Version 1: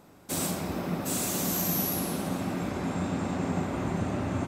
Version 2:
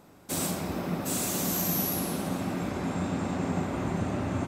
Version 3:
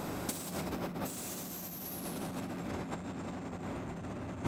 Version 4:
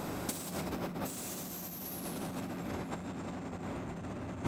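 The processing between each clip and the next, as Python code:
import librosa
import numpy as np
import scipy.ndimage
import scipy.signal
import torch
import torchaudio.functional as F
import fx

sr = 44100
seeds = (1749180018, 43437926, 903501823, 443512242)

y1 = x
y2 = 10.0 ** (-27.5 / 20.0) * np.tanh(y1 / 10.0 ** (-27.5 / 20.0))
y2 = fx.over_compress(y2, sr, threshold_db=-41.0, ratio=-0.5)
y2 = y2 * 10.0 ** (5.0 / 20.0)
y3 = y2 + 10.0 ** (-22.0 / 20.0) * np.pad(y2, (int(798 * sr / 1000.0), 0))[:len(y2)]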